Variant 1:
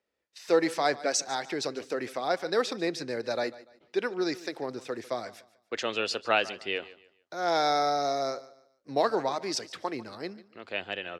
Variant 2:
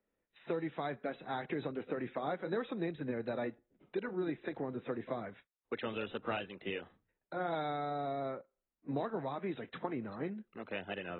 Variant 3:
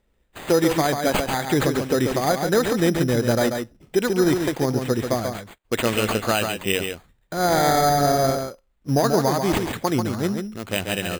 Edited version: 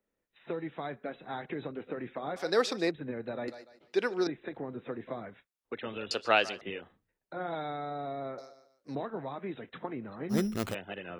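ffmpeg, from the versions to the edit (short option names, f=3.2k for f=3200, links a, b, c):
-filter_complex "[0:a]asplit=4[a][b][c][d];[1:a]asplit=6[e][f][g][h][i][j];[e]atrim=end=2.362[k];[a]atrim=start=2.358:end=2.912[l];[f]atrim=start=2.908:end=3.482[m];[b]atrim=start=3.478:end=4.272[n];[g]atrim=start=4.268:end=6.112[o];[c]atrim=start=6.108:end=6.612[p];[h]atrim=start=6.608:end=8.382[q];[d]atrim=start=8.378:end=8.952[r];[i]atrim=start=8.948:end=10.35[s];[2:a]atrim=start=10.29:end=10.75[t];[j]atrim=start=10.69[u];[k][l]acrossfade=d=0.004:c1=hsin:c2=hsin[v];[v][m]acrossfade=d=0.004:c1=hsin:c2=hsin[w];[w][n]acrossfade=d=0.004:c1=hsin:c2=hsin[x];[x][o]acrossfade=d=0.004:c1=hsin:c2=hsin[y];[y][p]acrossfade=d=0.004:c1=hsin:c2=hsin[z];[z][q]acrossfade=d=0.004:c1=hsin:c2=hsin[aa];[aa][r]acrossfade=d=0.004:c1=hsin:c2=hsin[ab];[ab][s]acrossfade=d=0.004:c1=hsin:c2=hsin[ac];[ac][t]acrossfade=d=0.06:c1=tri:c2=tri[ad];[ad][u]acrossfade=d=0.06:c1=tri:c2=tri"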